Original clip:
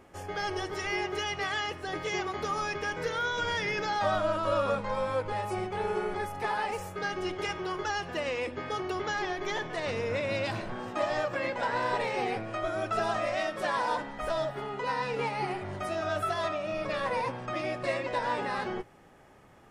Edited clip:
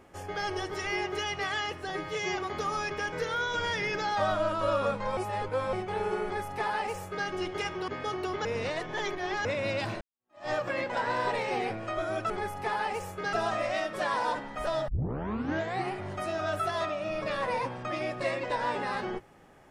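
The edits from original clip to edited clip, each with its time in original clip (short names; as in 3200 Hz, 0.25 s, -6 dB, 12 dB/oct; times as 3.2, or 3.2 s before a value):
1.9–2.22 stretch 1.5×
5.01–5.57 reverse
6.08–7.11 copy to 12.96
7.72–8.54 cut
9.11–10.11 reverse
10.67–11.15 fade in exponential
14.51 tape start 0.99 s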